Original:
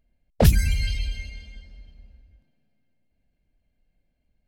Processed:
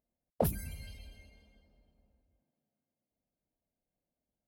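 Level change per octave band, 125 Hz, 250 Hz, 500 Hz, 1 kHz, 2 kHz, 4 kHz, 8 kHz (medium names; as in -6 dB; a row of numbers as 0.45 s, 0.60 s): -17.5 dB, -12.5 dB, -8.0 dB, -7.5 dB, -20.0 dB, -21.0 dB, -12.5 dB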